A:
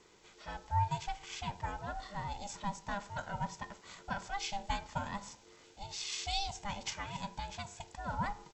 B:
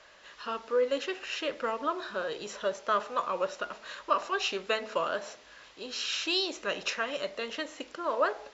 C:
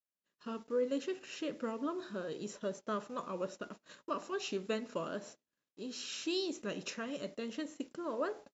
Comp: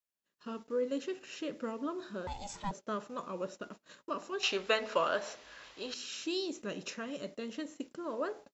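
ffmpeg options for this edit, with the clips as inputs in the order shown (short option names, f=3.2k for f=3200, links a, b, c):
-filter_complex "[2:a]asplit=3[a][b][c];[a]atrim=end=2.272[d];[0:a]atrim=start=2.268:end=2.712[e];[b]atrim=start=2.708:end=4.432[f];[1:a]atrim=start=4.428:end=5.942[g];[c]atrim=start=5.938[h];[d][e]acrossfade=d=0.004:c1=hsin:c2=hsin[i];[i][f]acrossfade=d=0.004:c1=hsin:c2=hsin[j];[j][g]acrossfade=d=0.004:c1=hsin:c2=hsin[k];[k][h]acrossfade=d=0.004:c1=hsin:c2=hsin"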